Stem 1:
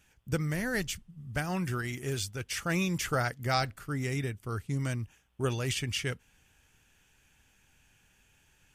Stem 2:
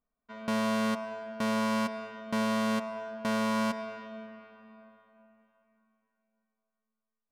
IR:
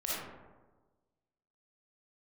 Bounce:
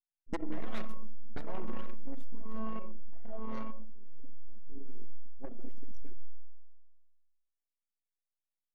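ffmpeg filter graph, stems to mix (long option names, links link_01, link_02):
-filter_complex "[0:a]agate=range=-38dB:threshold=-53dB:ratio=16:detection=peak,aeval=exprs='abs(val(0))':channel_layout=same,volume=1.5dB,afade=type=out:start_time=2.24:duration=0.42:silence=0.298538,afade=type=in:start_time=4.02:duration=0.79:silence=0.473151,asplit=3[link_01][link_02][link_03];[link_02]volume=-4.5dB[link_04];[1:a]acrusher=bits=4:mix=0:aa=0.5,volume=-8dB,asplit=2[link_05][link_06];[link_06]volume=-7dB[link_07];[link_03]apad=whole_len=322698[link_08];[link_05][link_08]sidechaincompress=threshold=-56dB:ratio=3:attack=46:release=350[link_09];[2:a]atrim=start_sample=2205[link_10];[link_04][link_07]amix=inputs=2:normalize=0[link_11];[link_11][link_10]afir=irnorm=-1:irlink=0[link_12];[link_01][link_09][link_12]amix=inputs=3:normalize=0,anlmdn=15.8,acompressor=threshold=-23dB:ratio=6"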